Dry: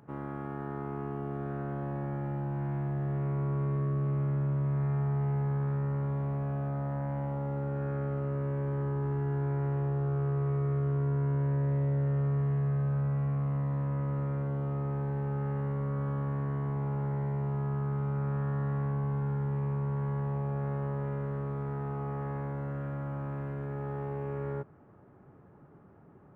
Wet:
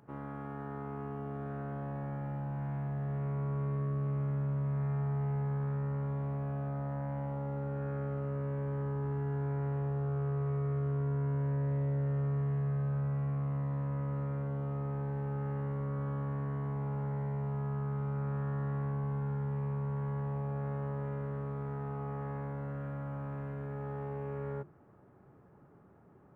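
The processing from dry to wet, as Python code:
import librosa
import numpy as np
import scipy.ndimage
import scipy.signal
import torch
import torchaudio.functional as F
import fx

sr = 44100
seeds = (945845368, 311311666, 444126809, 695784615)

y = fx.hum_notches(x, sr, base_hz=50, count=7)
y = y * 10.0 ** (-3.0 / 20.0)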